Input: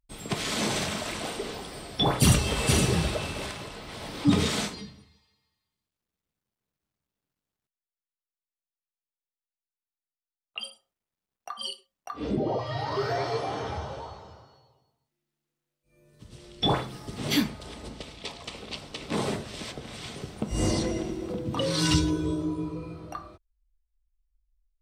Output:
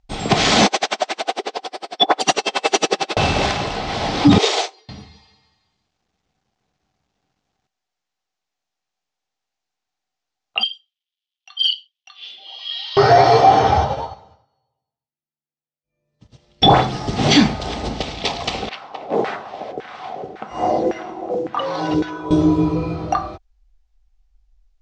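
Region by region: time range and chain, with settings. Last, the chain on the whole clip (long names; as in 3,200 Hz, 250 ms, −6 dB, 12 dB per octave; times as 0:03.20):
0:00.66–0:03.17: high-pass filter 320 Hz 24 dB per octave + tremolo with a sine in dB 11 Hz, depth 37 dB
0:04.38–0:04.89: dynamic equaliser 1,500 Hz, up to −6 dB, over −48 dBFS, Q 1.8 + elliptic high-pass filter 360 Hz + expander for the loud parts 2.5 to 1, over −45 dBFS
0:10.63–0:12.97: dynamic equaliser 3,900 Hz, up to +5 dB, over −47 dBFS, Q 0.82 + four-pole ladder band-pass 3,400 Hz, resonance 75% + hard clipping −26.5 dBFS
0:13.84–0:16.62: notch comb filter 370 Hz + expander for the loud parts 2.5 to 1, over −55 dBFS
0:18.69–0:22.31: auto-filter band-pass saw down 1.8 Hz 400–1,800 Hz + noise that follows the level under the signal 31 dB
whole clip: Butterworth low-pass 6,800 Hz 36 dB per octave; parametric band 760 Hz +12.5 dB 0.22 octaves; boost into a limiter +16 dB; level −1 dB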